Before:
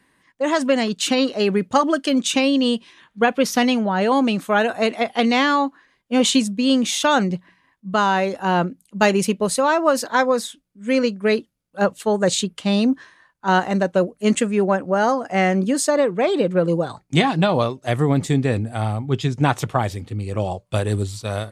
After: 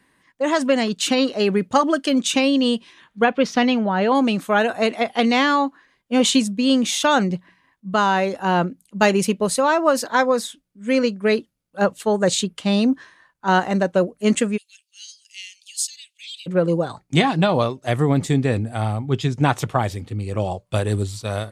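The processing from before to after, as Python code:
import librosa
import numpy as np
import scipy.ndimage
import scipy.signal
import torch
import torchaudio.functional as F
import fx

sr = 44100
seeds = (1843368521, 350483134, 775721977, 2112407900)

y = fx.lowpass(x, sr, hz=4400.0, slope=12, at=(3.24, 4.15))
y = fx.steep_highpass(y, sr, hz=2800.0, slope=48, at=(14.56, 16.46), fade=0.02)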